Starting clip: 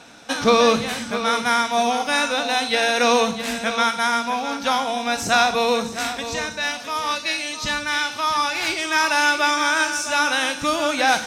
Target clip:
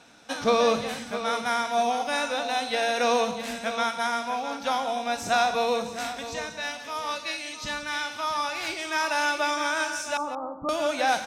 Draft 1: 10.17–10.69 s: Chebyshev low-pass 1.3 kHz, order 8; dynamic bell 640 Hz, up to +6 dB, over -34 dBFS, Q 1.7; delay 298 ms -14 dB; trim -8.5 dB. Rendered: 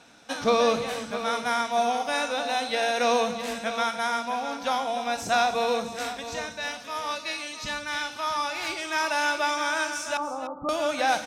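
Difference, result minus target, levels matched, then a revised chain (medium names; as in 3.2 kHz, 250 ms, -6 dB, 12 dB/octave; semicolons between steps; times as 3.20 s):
echo 121 ms late
10.17–10.69 s: Chebyshev low-pass 1.3 kHz, order 8; dynamic bell 640 Hz, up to +6 dB, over -34 dBFS, Q 1.7; delay 177 ms -14 dB; trim -8.5 dB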